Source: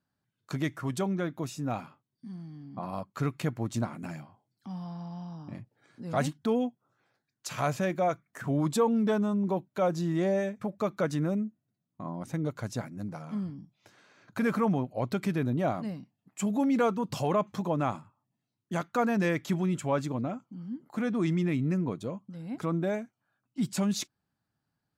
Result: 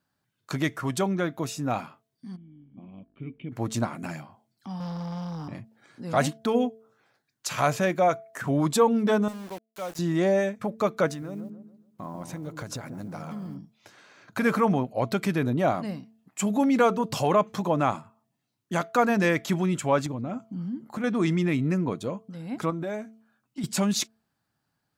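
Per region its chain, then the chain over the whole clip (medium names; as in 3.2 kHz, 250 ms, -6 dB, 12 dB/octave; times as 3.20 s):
2.35–3.51 s: band-stop 280 Hz, Q 7.3 + mains buzz 50 Hz, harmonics 35, -62 dBFS -3 dB/octave + cascade formant filter i
4.80–5.48 s: high-pass 65 Hz + peaking EQ 580 Hz -12.5 dB 0.22 oct + waveshaping leveller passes 2
9.28–9.99 s: pre-emphasis filter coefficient 0.8 + small samples zeroed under -45.5 dBFS
11.08–13.58 s: block-companded coder 7-bit + compression 5:1, threshold -37 dBFS + feedback echo behind a low-pass 140 ms, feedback 37%, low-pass 990 Hz, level -7 dB
20.06–21.04 s: bass shelf 260 Hz +8.5 dB + compression, threshold -31 dBFS
22.70–23.64 s: doubling 14 ms -11.5 dB + compression 4:1, threshold -33 dBFS
whole clip: bass shelf 340 Hz -5.5 dB; de-hum 222.2 Hz, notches 3; trim +7 dB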